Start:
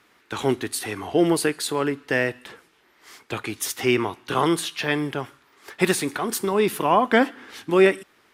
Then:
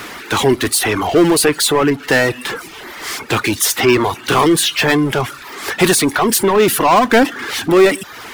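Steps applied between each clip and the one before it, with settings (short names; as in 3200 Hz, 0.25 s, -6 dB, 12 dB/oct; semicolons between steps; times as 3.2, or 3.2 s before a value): power-law curve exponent 0.5; reverb removal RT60 0.62 s; gain +3 dB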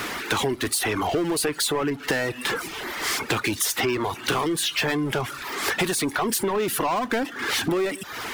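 compressor 10:1, threshold -22 dBFS, peak gain reduction 15.5 dB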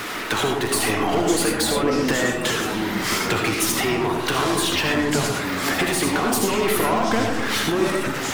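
reverb RT60 0.95 s, pre-delay 35 ms, DRR 0.5 dB; echoes that change speed 0.311 s, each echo -5 st, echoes 3, each echo -6 dB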